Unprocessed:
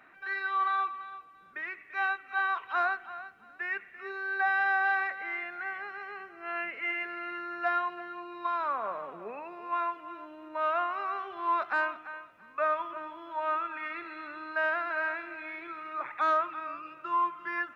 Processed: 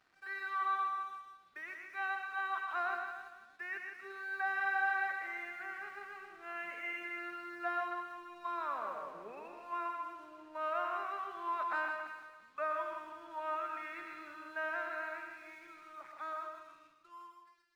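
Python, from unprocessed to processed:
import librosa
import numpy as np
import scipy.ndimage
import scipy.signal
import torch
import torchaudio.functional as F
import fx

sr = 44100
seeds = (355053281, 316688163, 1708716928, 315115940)

y = fx.fade_out_tail(x, sr, length_s=3.57)
y = np.sign(y) * np.maximum(np.abs(y) - 10.0 ** (-59.0 / 20.0), 0.0)
y = fx.echo_multitap(y, sr, ms=(122, 159, 274), db=(-7.0, -6.5, -12.5))
y = F.gain(torch.from_numpy(y), -8.0).numpy()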